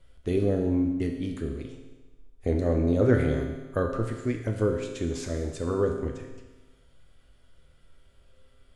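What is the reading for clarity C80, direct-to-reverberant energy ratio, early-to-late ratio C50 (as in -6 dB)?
7.0 dB, 2.5 dB, 5.5 dB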